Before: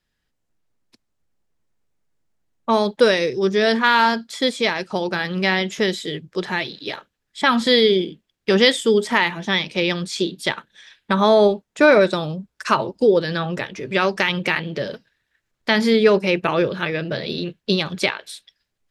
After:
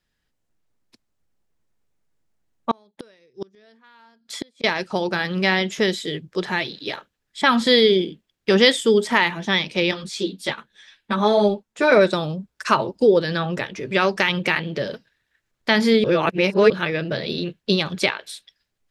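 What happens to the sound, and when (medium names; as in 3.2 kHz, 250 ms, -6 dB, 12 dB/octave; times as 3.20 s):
2.71–4.64 s: inverted gate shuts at -15 dBFS, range -36 dB
9.91–11.92 s: three-phase chorus
16.04–16.70 s: reverse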